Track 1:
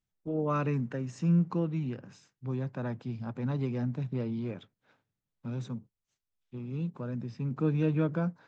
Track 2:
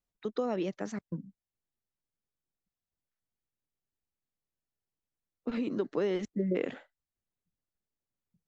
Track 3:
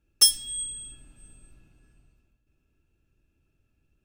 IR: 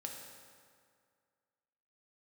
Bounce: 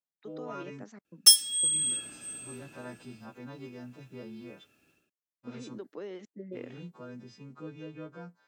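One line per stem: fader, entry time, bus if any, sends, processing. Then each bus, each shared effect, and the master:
−9.0 dB, 0.00 s, muted 0:00.84–0:01.63, no send, every partial snapped to a pitch grid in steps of 2 semitones; downward expander −53 dBFS; speech leveller 0.5 s
−10.5 dB, 0.00 s, no send, no processing
+0.5 dB, 1.05 s, no send, low-shelf EQ 440 Hz −7 dB; notch filter 940 Hz, Q 6.6; automatic gain control gain up to 14.5 dB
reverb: not used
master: high-pass filter 210 Hz 12 dB per octave

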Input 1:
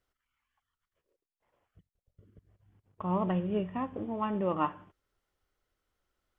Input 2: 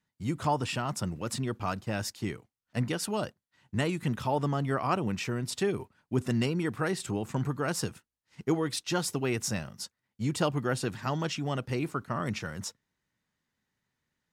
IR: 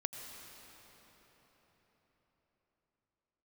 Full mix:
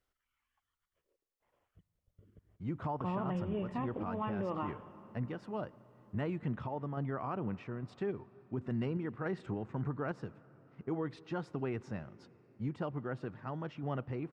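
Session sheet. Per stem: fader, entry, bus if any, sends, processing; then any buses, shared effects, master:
−4.5 dB, 0.00 s, send −10.5 dB, brickwall limiter −23.5 dBFS, peak gain reduction 6.5 dB
−4.5 dB, 2.40 s, send −16.5 dB, low-pass filter 1,600 Hz 12 dB per octave; sample-and-hold tremolo 3.5 Hz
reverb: on, RT60 4.8 s, pre-delay 79 ms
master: brickwall limiter −27.5 dBFS, peak gain reduction 7 dB

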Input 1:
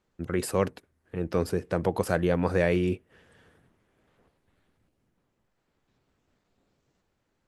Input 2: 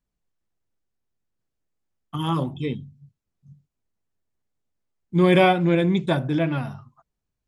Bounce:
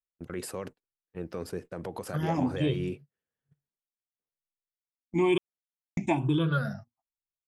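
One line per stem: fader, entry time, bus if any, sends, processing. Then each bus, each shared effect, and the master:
−5.0 dB, 0.00 s, no send, high-pass filter 120 Hz 6 dB per octave; noise gate with hold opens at −57 dBFS; brickwall limiter −20 dBFS, peak gain reduction 9.5 dB
−4.5 dB, 0.00 s, muted 0:05.38–0:05.97, no send, rippled gain that drifts along the octave scale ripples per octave 0.65, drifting +1.1 Hz, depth 24 dB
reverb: not used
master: noise gate −42 dBFS, range −30 dB; downward compressor 6 to 1, threshold −22 dBFS, peak gain reduction 10.5 dB

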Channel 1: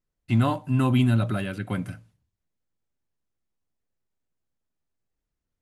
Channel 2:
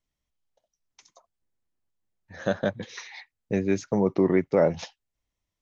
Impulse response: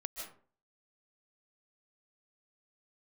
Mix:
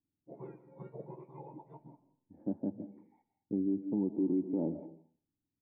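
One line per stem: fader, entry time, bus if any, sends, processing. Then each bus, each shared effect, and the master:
+0.5 dB, 0.00 s, send −7 dB, frequency axis turned over on the octave scale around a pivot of 1,200 Hz
−9.0 dB, 0.00 s, send −4.5 dB, parametric band 240 Hz +10 dB 1.7 octaves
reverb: on, RT60 0.45 s, pre-delay 110 ms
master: formant resonators in series u; brickwall limiter −23.5 dBFS, peak gain reduction 8 dB

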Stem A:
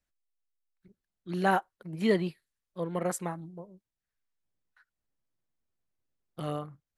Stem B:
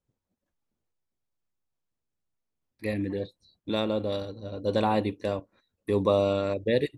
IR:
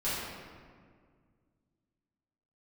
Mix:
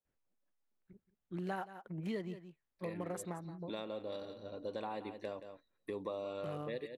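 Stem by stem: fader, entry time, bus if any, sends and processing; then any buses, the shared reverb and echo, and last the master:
−0.5 dB, 0.05 s, no send, echo send −18.5 dB, adaptive Wiener filter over 9 samples
−5.5 dB, 0.00 s, no send, echo send −13.5 dB, high-pass filter 410 Hz 6 dB per octave; high-shelf EQ 4,200 Hz −7 dB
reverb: not used
echo: single-tap delay 174 ms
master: downward compressor 4 to 1, threshold −39 dBFS, peak gain reduction 15.5 dB

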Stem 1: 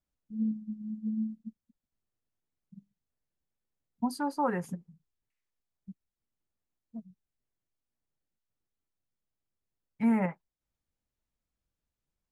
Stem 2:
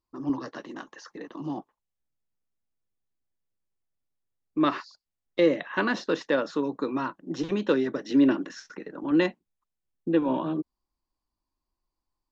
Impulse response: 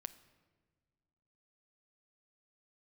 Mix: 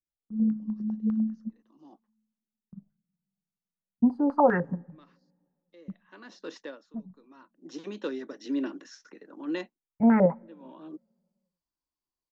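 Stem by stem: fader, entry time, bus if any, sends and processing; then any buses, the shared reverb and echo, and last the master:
+2.0 dB, 0.00 s, send −10.5 dB, noise gate with hold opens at −51 dBFS; low-pass on a step sequencer 10 Hz 360–1,500 Hz
−10.5 dB, 0.35 s, no send, high-pass filter 210 Hz 24 dB per octave; parametric band 6,000 Hz +6 dB 1.2 octaves; automatic ducking −23 dB, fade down 0.35 s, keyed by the first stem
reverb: on, pre-delay 7 ms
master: low-shelf EQ 170 Hz +4 dB

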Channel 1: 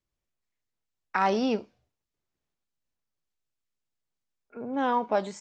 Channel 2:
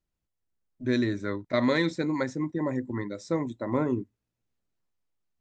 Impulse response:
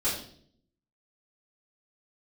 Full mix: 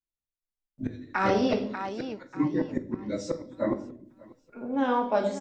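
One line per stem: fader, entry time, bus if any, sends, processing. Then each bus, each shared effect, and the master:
−4.0 dB, 0.00 s, send −8 dB, echo send −6 dB, no processing
+2.5 dB, 0.00 s, send −15.5 dB, echo send −21.5 dB, random phases in long frames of 50 ms; gate with flip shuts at −20 dBFS, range −28 dB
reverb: on, RT60 0.60 s, pre-delay 3 ms
echo: repeating echo 591 ms, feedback 33%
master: noise gate with hold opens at −59 dBFS

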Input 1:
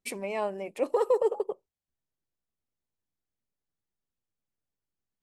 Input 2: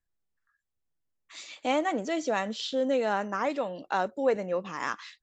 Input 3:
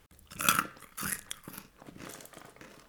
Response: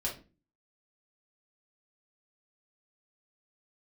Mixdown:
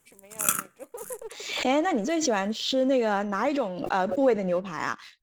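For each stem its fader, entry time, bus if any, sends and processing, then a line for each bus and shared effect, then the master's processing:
−17.5 dB, 0.00 s, no send, no processing
−2.5 dB, 0.00 s, no send, low-shelf EQ 250 Hz +7.5 dB; background raised ahead of every attack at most 61 dB per second
−4.0 dB, 0.00 s, no send, Chebyshev high-pass filter 150 Hz, order 2; high shelf with overshoot 5,900 Hz +7.5 dB, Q 3; automatic ducking −16 dB, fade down 0.85 s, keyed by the second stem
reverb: not used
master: leveller curve on the samples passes 1

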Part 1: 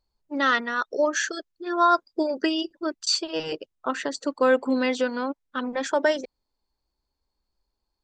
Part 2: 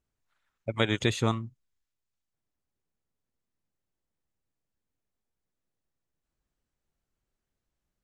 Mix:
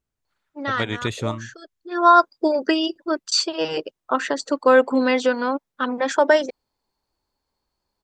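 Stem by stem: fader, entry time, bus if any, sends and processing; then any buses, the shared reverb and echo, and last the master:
+3.0 dB, 0.25 s, no send, high-pass filter 96 Hz; parametric band 920 Hz +4 dB 2.1 octaves; automatic ducking −23 dB, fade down 1.85 s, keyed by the second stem
0.0 dB, 0.00 s, no send, no processing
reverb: not used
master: no processing

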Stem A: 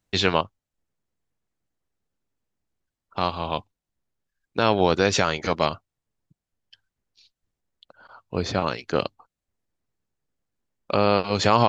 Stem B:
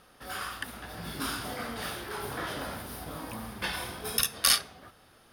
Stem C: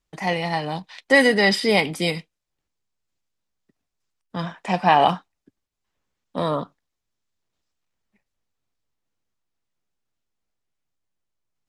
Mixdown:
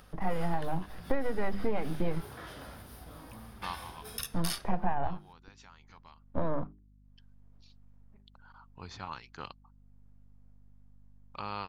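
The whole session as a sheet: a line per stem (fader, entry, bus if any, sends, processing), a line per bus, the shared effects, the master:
−16.5 dB, 0.45 s, no bus, no send, low shelf with overshoot 730 Hz −6.5 dB, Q 3; automatic ducking −19 dB, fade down 0.55 s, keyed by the third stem
−11.0 dB, 0.00 s, bus A, no send, no processing
−0.5 dB, 0.00 s, bus A, no send, gain on one half-wave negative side −12 dB; low-pass filter 1,100 Hz 12 dB per octave
bus A: 0.0 dB, mains-hum notches 50/100/150/200/250/300/350/400 Hz; downward compressor 16 to 1, threshold −28 dBFS, peak gain reduction 14.5 dB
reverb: not used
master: low-shelf EQ 97 Hz +12 dB; upward compression, threshold −49 dBFS; mains hum 50 Hz, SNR 28 dB

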